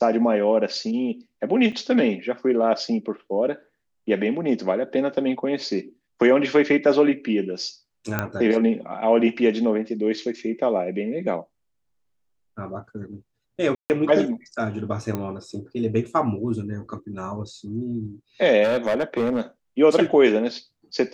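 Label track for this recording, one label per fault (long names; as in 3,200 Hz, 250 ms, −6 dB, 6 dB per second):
1.720000	1.720000	drop-out 4.7 ms
8.190000	8.190000	click −9 dBFS
13.750000	13.900000	drop-out 149 ms
15.150000	15.150000	click −14 dBFS
18.630000	19.410000	clipping −17.5 dBFS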